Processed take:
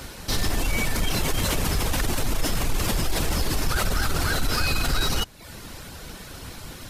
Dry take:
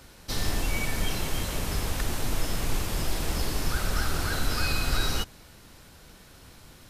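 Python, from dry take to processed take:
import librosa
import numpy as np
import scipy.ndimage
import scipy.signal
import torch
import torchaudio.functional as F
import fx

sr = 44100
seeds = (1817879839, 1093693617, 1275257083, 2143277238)

p1 = fx.dereverb_blind(x, sr, rt60_s=0.54)
p2 = fx.over_compress(p1, sr, threshold_db=-35.0, ratio=-1.0)
p3 = p1 + F.gain(torch.from_numpy(p2), -1.0).numpy()
p4 = 10.0 ** (-16.5 / 20.0) * np.tanh(p3 / 10.0 ** (-16.5 / 20.0))
y = F.gain(torch.from_numpy(p4), 3.5).numpy()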